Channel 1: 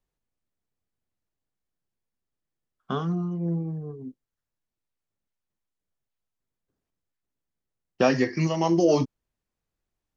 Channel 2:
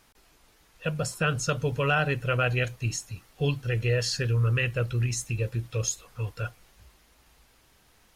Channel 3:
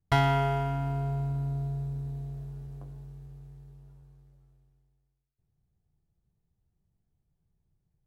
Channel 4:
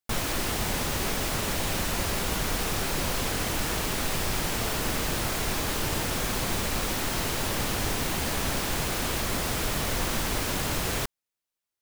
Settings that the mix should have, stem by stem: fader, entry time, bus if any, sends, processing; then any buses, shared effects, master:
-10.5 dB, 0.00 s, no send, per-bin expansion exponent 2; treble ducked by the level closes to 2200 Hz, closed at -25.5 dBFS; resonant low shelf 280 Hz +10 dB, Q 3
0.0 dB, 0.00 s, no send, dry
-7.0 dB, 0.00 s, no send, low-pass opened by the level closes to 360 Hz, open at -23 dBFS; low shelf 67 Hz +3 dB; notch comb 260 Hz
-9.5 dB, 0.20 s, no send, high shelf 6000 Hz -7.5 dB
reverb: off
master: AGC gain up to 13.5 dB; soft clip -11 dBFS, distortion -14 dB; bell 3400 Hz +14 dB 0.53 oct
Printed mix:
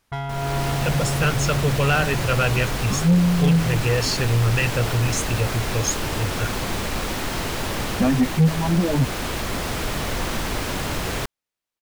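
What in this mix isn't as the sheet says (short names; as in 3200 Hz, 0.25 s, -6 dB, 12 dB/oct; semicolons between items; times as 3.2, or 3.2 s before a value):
stem 2 0.0 dB -> -7.5 dB; master: missing bell 3400 Hz +14 dB 0.53 oct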